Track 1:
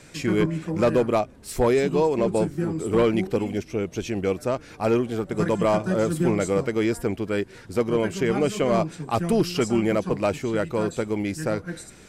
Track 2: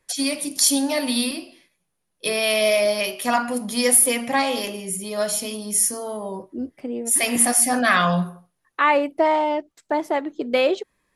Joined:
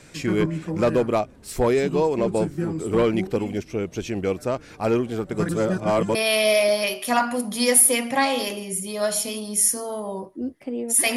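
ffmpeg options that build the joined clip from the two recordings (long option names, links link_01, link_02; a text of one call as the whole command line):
ffmpeg -i cue0.wav -i cue1.wav -filter_complex "[0:a]apad=whole_dur=11.16,atrim=end=11.16,asplit=2[link_01][link_02];[link_01]atrim=end=5.492[link_03];[link_02]atrim=start=5.488:end=6.152,asetpts=PTS-STARTPTS,areverse[link_04];[1:a]atrim=start=2.318:end=7.33[link_05];[link_03][link_04]acrossfade=duration=0.004:curve1=hsin:curve2=hsin[link_06];[link_06][link_05]acrossfade=duration=0.004:curve1=hsin:curve2=hsin" out.wav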